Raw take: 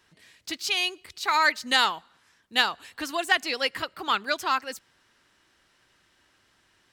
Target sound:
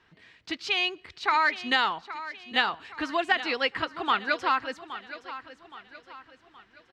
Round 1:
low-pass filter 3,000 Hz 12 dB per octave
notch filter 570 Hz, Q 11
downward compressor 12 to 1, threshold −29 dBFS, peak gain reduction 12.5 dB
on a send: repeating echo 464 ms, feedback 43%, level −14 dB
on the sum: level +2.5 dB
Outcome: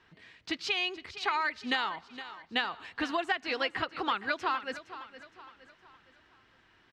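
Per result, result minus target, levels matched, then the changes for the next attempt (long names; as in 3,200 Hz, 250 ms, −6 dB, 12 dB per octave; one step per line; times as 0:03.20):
echo 356 ms early; downward compressor: peak gain reduction +7.5 dB
change: repeating echo 820 ms, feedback 43%, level −14 dB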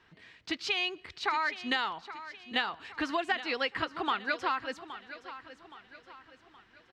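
downward compressor: peak gain reduction +7.5 dB
change: downward compressor 12 to 1, threshold −21 dBFS, peak gain reduction 5.5 dB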